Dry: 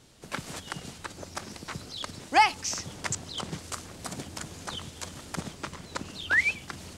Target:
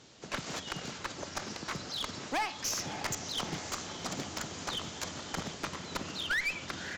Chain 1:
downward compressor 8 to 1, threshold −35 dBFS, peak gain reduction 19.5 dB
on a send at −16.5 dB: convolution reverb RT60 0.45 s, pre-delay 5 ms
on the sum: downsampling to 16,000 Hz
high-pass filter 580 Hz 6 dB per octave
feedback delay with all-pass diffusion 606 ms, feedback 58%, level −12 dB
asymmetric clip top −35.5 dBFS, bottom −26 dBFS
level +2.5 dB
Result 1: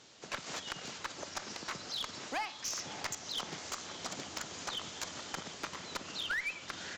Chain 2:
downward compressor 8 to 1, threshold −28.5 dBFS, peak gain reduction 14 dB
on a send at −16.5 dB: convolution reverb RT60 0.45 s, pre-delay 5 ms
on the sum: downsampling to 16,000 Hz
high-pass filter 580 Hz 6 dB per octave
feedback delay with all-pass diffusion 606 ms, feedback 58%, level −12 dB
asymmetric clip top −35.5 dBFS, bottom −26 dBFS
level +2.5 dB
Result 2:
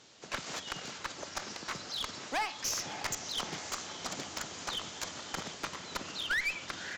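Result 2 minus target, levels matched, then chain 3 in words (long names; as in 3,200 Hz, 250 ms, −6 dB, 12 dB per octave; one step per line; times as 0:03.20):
250 Hz band −5.0 dB
downward compressor 8 to 1, threshold −28.5 dBFS, peak gain reduction 14 dB
on a send at −16.5 dB: convolution reverb RT60 0.45 s, pre-delay 5 ms
on the sum: downsampling to 16,000 Hz
high-pass filter 200 Hz 6 dB per octave
feedback delay with all-pass diffusion 606 ms, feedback 58%, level −12 dB
asymmetric clip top −35.5 dBFS, bottom −26 dBFS
level +2.5 dB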